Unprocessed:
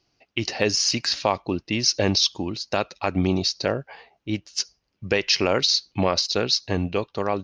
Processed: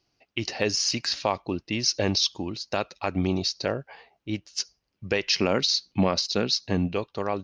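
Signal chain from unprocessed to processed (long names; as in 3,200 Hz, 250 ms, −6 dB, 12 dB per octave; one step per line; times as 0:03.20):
0:05.27–0:06.94: parametric band 210 Hz +7.5 dB 0.77 octaves
level −3.5 dB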